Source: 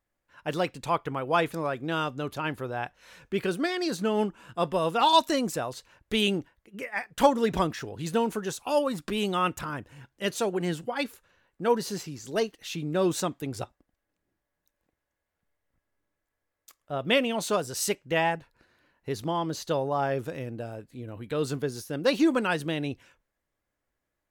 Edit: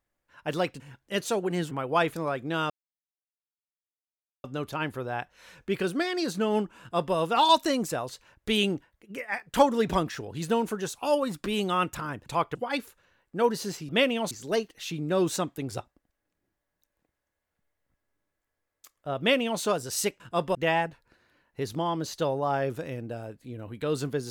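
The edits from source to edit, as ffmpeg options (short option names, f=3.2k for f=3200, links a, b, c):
-filter_complex "[0:a]asplit=10[a][b][c][d][e][f][g][h][i][j];[a]atrim=end=0.802[k];[b]atrim=start=9.898:end=10.812[l];[c]atrim=start=1.088:end=2.08,asetpts=PTS-STARTPTS,afade=t=out:st=0.988:d=0.004:c=hsin,apad=pad_dur=1.74[m];[d]atrim=start=2.08:end=9.902,asetpts=PTS-STARTPTS,afade=t=in:d=0.004:c=hsin[n];[e]atrim=start=0.798:end=1.092[o];[f]atrim=start=10.808:end=12.152[p];[g]atrim=start=17.028:end=17.452[q];[h]atrim=start=12.148:end=18.042[r];[i]atrim=start=4.438:end=4.792[s];[j]atrim=start=18.038[t];[k][l]acrossfade=d=0.004:c1=hsin:c2=hsin[u];[m][n]concat=n=2:v=0:a=1[v];[u][v]acrossfade=d=0.004:c1=hsin:c2=hsin[w];[w][o]acrossfade=d=0.004:c1=hsin:c2=hsin[x];[x][p]acrossfade=d=0.004:c1=hsin:c2=hsin[y];[y][q]acrossfade=d=0.004:c1=hsin:c2=hsin[z];[z][r]acrossfade=d=0.004:c1=hsin:c2=hsin[aa];[aa][s]acrossfade=d=0.004:c1=hsin:c2=hsin[ab];[ab][t]acrossfade=d=0.004:c1=hsin:c2=hsin"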